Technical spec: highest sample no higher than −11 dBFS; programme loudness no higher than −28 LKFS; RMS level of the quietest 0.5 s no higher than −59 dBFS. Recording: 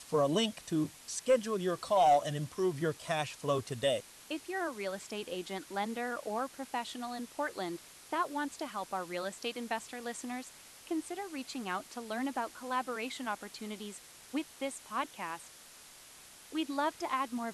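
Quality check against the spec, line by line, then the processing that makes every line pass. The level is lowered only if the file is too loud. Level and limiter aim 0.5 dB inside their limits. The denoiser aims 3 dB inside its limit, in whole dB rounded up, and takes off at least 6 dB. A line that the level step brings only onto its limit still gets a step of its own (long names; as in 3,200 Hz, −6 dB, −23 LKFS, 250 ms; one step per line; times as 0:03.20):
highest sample −18.0 dBFS: in spec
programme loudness −35.5 LKFS: in spec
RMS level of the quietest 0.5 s −55 dBFS: out of spec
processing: broadband denoise 7 dB, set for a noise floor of −55 dBFS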